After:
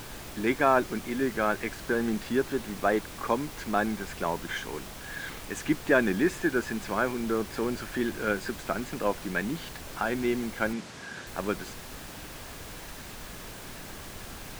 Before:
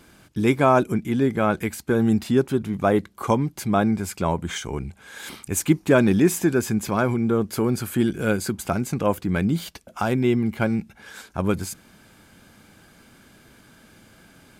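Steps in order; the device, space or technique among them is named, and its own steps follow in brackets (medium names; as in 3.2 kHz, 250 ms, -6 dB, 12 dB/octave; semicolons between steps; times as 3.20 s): horn gramophone (band-pass 260–4500 Hz; peaking EQ 1.7 kHz +9.5 dB 0.34 oct; wow and flutter; pink noise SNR 11 dB); 10.73–11.27 s: Chebyshev band-pass 140–6600 Hz, order 2; trim -5.5 dB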